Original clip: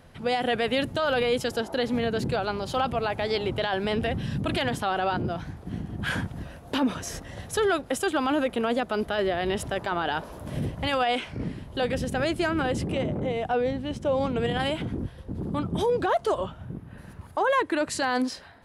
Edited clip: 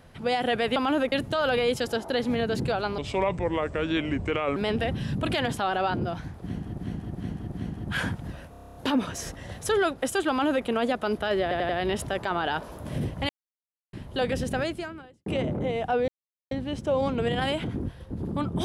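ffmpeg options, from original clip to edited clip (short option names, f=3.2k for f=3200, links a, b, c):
-filter_complex "[0:a]asplit=23[a][b][c][d][e][f][g][h][i][j][k][l][m][n][o][p][q][r][s][t][u][v][w];[a]atrim=end=0.762[x];[b]atrim=start=8.168:end=8.532[y];[c]atrim=start=0.758:end=2.624[z];[d]atrim=start=2.62:end=3.79,asetpts=PTS-STARTPTS,asetrate=32634,aresample=44100[aa];[e]atrim=start=3.786:end=6.012[ab];[f]atrim=start=5.638:end=6.012[ac];[g]atrim=start=5.638:end=6.012[ad];[h]atrim=start=5.638:end=6.662[ae];[i]atrim=start=6.628:end=6.662[af];[j]atrim=start=6.628:end=6.662[ag];[k]atrim=start=6.628:end=6.662[ah];[l]atrim=start=6.628:end=6.662[ai];[m]atrim=start=6.628:end=6.662[aj];[n]atrim=start=6.628:end=6.662[ak];[o]atrim=start=6.628:end=6.662[al];[p]atrim=start=6.628:end=9.392[am];[q]atrim=start=9.298:end=9.392[an];[r]atrim=start=9.298:end=9.392[ao];[s]atrim=start=9.298:end=10.9,asetpts=PTS-STARTPTS,afade=t=out:st=1.598:d=0.004:c=hsin[ap];[t]atrim=start=10.9:end=11.54,asetpts=PTS-STARTPTS,volume=0[aq];[u]atrim=start=11.54:end=12.87,asetpts=PTS-STARTPTS,afade=t=in:d=0.004:c=hsin,afade=t=out:st=0.61:d=0.72:c=qua[ar];[v]atrim=start=12.87:end=13.69,asetpts=PTS-STARTPTS,afade=t=in:d=0.004:c=hsin,afade=t=out:st=0.816:d=0.004:c=hsin,apad=pad_dur=0.43[as];[w]atrim=start=13.69,asetpts=PTS-STARTPTS,afade=t=in:d=0.004:c=hsin[at];[x][y]acrossfade=d=0.004:c1=hsin:c2=hsin[au];[au][z]acrossfade=d=0.004:c1=hsin:c2=hsin[av];[av][aa]acrossfade=d=0.004:c1=hsin:c2=hsin[aw];[aw][ab]acrossfade=d=0.004:c1=hsin:c2=hsin[ax];[ax][ac]acrossfade=d=0.004:c1=hsin:c2=hsin[ay];[ay][ad]acrossfade=d=0.004:c1=hsin:c2=hsin[az];[az][ae]acrossfade=d=0.004:c1=hsin:c2=hsin[ba];[ba][af]acrossfade=d=0.004:c1=hsin:c2=hsin[bb];[bb][ag]acrossfade=d=0.004:c1=hsin:c2=hsin[bc];[bc][ah]acrossfade=d=0.004:c1=hsin:c2=hsin[bd];[bd][ai]acrossfade=d=0.004:c1=hsin:c2=hsin[be];[be][aj]acrossfade=d=0.004:c1=hsin:c2=hsin[bf];[bf][ak]acrossfade=d=0.004:c1=hsin:c2=hsin[bg];[bg][al]acrossfade=d=0.004:c1=hsin:c2=hsin[bh];[bh][am]acrossfade=d=0.004:c1=hsin:c2=hsin[bi];[bi][an]acrossfade=d=0.004:c1=hsin:c2=hsin[bj];[bj][ao]acrossfade=d=0.004:c1=hsin:c2=hsin[bk];[ap][aq][ar][as][at]concat=n=5:v=0:a=1[bl];[bk][bl]acrossfade=d=0.004:c1=hsin:c2=hsin"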